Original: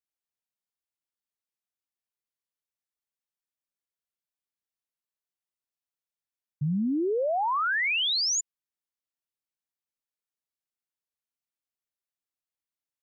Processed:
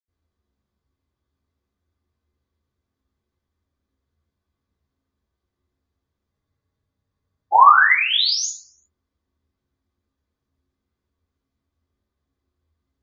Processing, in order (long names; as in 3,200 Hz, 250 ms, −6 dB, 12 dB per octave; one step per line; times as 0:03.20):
tape wow and flutter 18 cents
convolution reverb RT60 0.50 s, pre-delay 76 ms
frozen spectrum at 0:06.34, 1.20 s
level +5.5 dB